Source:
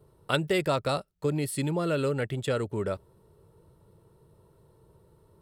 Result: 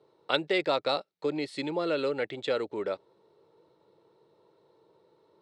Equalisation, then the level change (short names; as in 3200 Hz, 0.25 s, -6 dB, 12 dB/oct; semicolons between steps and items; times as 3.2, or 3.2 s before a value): speaker cabinet 310–6100 Hz, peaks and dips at 310 Hz +5 dB, 500 Hz +4 dB, 810 Hz +5 dB, 2200 Hz +6 dB, 3900 Hz +8 dB; -2.5 dB